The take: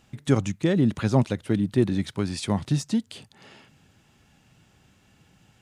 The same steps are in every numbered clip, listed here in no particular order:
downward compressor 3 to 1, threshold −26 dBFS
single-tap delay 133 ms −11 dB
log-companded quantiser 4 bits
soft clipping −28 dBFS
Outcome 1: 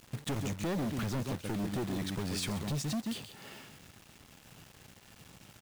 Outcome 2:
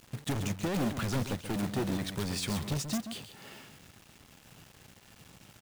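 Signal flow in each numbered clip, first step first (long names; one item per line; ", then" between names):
single-tap delay, then downward compressor, then soft clipping, then log-companded quantiser
soft clipping, then single-tap delay, then log-companded quantiser, then downward compressor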